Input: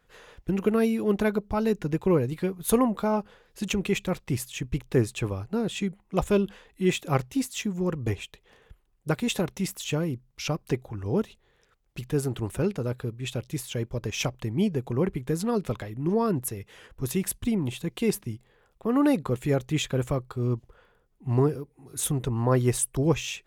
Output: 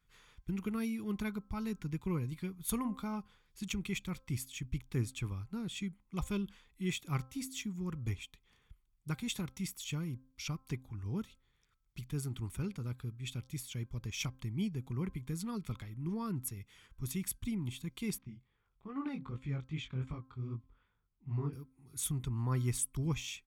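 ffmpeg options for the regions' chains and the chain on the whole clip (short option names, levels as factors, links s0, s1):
-filter_complex "[0:a]asettb=1/sr,asplit=3[s0][s1][s2];[s0]atrim=end=18.184[s3];[s1]atrim=start=18.18:end=21.53,asetpts=PTS-STARTPTS,afade=t=in:d=0.004:c=qsin,afade=t=out:st=3.346:d=0.004:c=qsin,lowpass=3200,flanger=delay=18:depth=5.6:speed=2.5[s4];[s2]atrim=start=21.526[s5];[s3][s4]acrossfade=d=0.004:c1=hsin:c2=qsin[s6];[s6][s5]acrossfade=d=0.004:c1=qsin:c2=hsin,equalizer=f=580:t=o:w=1.9:g=-12,aecho=1:1:0.9:0.39,bandreject=f=262.7:t=h:w=4,bandreject=f=525.4:t=h:w=4,bandreject=f=788.1:t=h:w=4,bandreject=f=1050.8:t=h:w=4,bandreject=f=1313.5:t=h:w=4,bandreject=f=1576.2:t=h:w=4,volume=0.376"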